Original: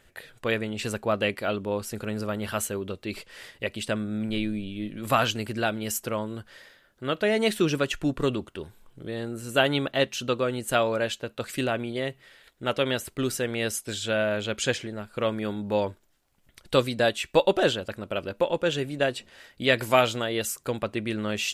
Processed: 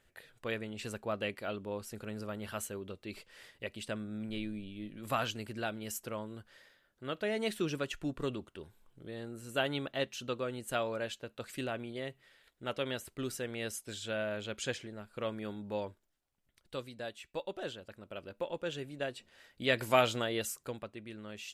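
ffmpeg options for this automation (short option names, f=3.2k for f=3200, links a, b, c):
-af "volume=3.5dB,afade=t=out:st=15.5:d=1.27:silence=0.375837,afade=t=in:st=17.53:d=1.03:silence=0.473151,afade=t=in:st=19.17:d=1.03:silence=0.421697,afade=t=out:st=20.2:d=0.72:silence=0.251189"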